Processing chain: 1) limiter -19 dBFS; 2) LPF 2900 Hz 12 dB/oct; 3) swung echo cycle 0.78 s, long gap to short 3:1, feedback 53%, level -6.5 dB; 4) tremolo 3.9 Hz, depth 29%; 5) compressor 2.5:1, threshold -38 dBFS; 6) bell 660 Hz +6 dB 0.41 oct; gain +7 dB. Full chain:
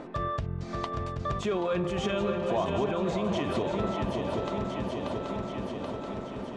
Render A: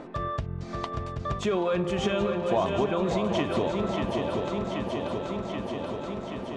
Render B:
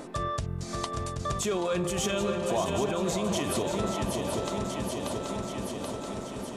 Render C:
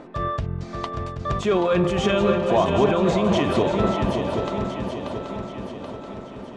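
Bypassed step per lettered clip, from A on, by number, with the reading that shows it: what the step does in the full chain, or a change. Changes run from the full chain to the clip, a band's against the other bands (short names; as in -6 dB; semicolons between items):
1, mean gain reduction 2.0 dB; 2, 8 kHz band +16.0 dB; 5, mean gain reduction 5.5 dB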